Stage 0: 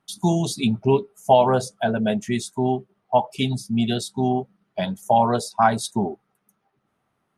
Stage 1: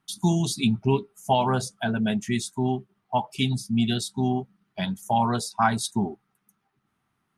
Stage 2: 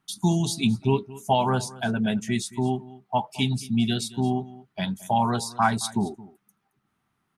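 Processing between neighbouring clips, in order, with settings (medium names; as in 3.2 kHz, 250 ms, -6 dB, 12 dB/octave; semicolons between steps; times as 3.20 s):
peaking EQ 550 Hz -12 dB 0.93 oct
delay 221 ms -19.5 dB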